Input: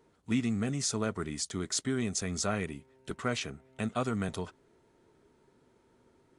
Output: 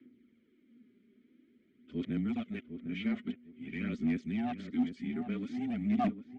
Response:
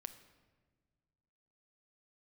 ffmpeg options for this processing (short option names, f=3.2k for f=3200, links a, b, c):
-filter_complex "[0:a]areverse,aemphasis=mode=reproduction:type=75kf,acrossover=split=2900[a][b];[b]acompressor=threshold=-48dB:ratio=4:attack=1:release=60[c];[a][c]amix=inputs=2:normalize=0,lowshelf=f=260:g=-4.5,acrossover=split=2900[d][e];[e]alimiter=level_in=21.5dB:limit=-24dB:level=0:latency=1,volume=-21.5dB[f];[d][f]amix=inputs=2:normalize=0,asplit=3[g][h][i];[g]bandpass=f=270:t=q:w=8,volume=0dB[j];[h]bandpass=f=2.29k:t=q:w=8,volume=-6dB[k];[i]bandpass=f=3.01k:t=q:w=8,volume=-9dB[l];[j][k][l]amix=inputs=3:normalize=0,afreqshift=-21,aeval=exprs='0.1*sin(PI/2*6.31*val(0)/0.1)':c=same,aphaser=in_gain=1:out_gain=1:delay=5:decay=0.49:speed=0.49:type=sinusoidal,asoftclip=type=hard:threshold=-16.5dB,asplit=2[m][n];[n]adelay=754,lowpass=f=1.1k:p=1,volume=-8.5dB,asplit=2[o][p];[p]adelay=754,lowpass=f=1.1k:p=1,volume=0.22,asplit=2[q][r];[r]adelay=754,lowpass=f=1.1k:p=1,volume=0.22[s];[o][q][s]amix=inputs=3:normalize=0[t];[m][t]amix=inputs=2:normalize=0,aresample=22050,aresample=44100,volume=-8.5dB"